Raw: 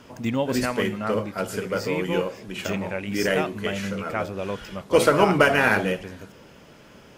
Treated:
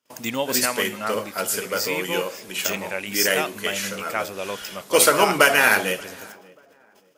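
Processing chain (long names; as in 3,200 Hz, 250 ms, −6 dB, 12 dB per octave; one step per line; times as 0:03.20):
noise gate −45 dBFS, range −35 dB
RIAA equalisation recording
on a send: tape delay 583 ms, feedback 33%, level −22 dB, low-pass 1,200 Hz
on the sum: level +2 dB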